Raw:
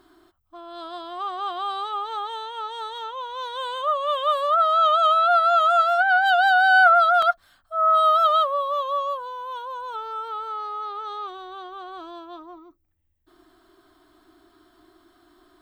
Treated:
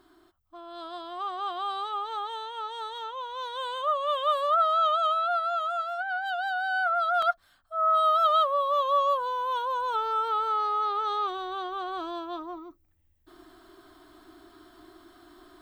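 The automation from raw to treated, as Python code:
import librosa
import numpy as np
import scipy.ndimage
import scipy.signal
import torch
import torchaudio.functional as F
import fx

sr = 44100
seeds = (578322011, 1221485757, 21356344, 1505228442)

y = fx.gain(x, sr, db=fx.line((4.55, -3.5), (5.82, -12.5), (6.84, -12.5), (7.28, -5.0), (8.13, -5.0), (9.3, 4.0)))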